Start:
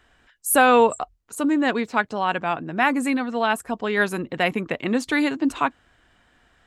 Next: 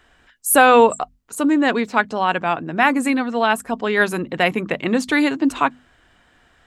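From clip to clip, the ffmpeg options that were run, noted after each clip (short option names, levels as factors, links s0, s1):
-af "bandreject=f=50:t=h:w=6,bandreject=f=100:t=h:w=6,bandreject=f=150:t=h:w=6,bandreject=f=200:t=h:w=6,bandreject=f=250:t=h:w=6,volume=1.58"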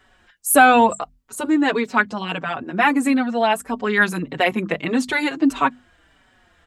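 -filter_complex "[0:a]asplit=2[s0][s1];[s1]adelay=4.8,afreqshift=-1.6[s2];[s0][s2]amix=inputs=2:normalize=1,volume=1.26"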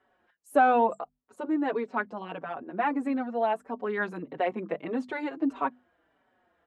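-af "bandpass=f=540:t=q:w=0.87:csg=0,volume=0.473"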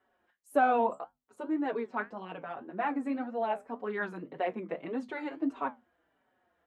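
-af "flanger=delay=9.9:depth=6.1:regen=-63:speed=1.8:shape=triangular"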